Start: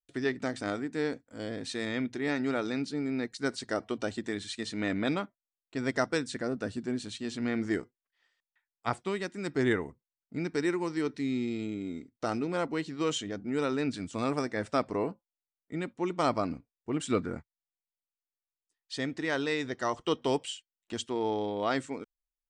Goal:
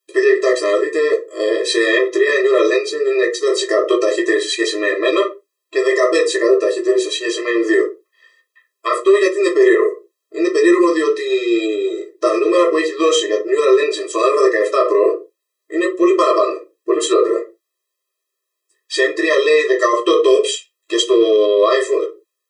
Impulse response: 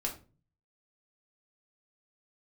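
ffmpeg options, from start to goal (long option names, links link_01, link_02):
-filter_complex "[1:a]atrim=start_sample=2205,afade=type=out:start_time=0.35:duration=0.01,atrim=end_sample=15876,asetrate=66150,aresample=44100[link_01];[0:a][link_01]afir=irnorm=-1:irlink=0,alimiter=level_in=24.5dB:limit=-1dB:release=50:level=0:latency=1,afftfilt=real='re*eq(mod(floor(b*sr/1024/340),2),1)':imag='im*eq(mod(floor(b*sr/1024/340),2),1)':win_size=1024:overlap=0.75,volume=-1dB"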